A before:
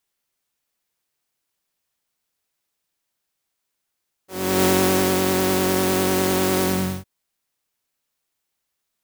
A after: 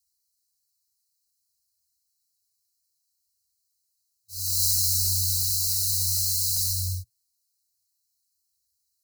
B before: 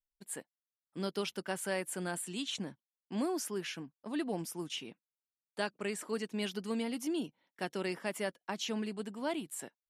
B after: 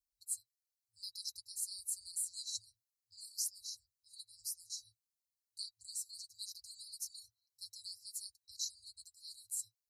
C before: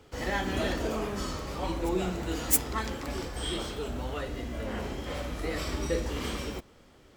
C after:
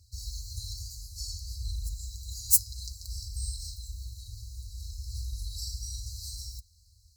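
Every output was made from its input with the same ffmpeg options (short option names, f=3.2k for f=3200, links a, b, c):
-af "afftfilt=real='re*(1-between(b*sr/4096,110,3900))':imag='im*(1-between(b*sr/4096,110,3900))':win_size=4096:overlap=0.75,highpass=51,flanger=delay=1.8:depth=6.2:regen=19:speed=0.57:shape=triangular,volume=7dB"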